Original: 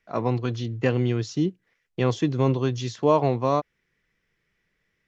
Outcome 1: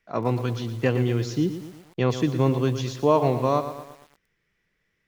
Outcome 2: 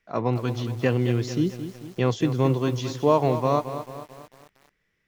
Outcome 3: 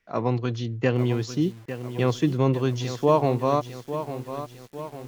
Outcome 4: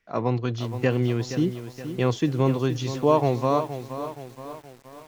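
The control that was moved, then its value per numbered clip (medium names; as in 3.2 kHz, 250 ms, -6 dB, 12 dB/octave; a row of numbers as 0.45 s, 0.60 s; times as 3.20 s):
bit-crushed delay, time: 116 ms, 221 ms, 851 ms, 472 ms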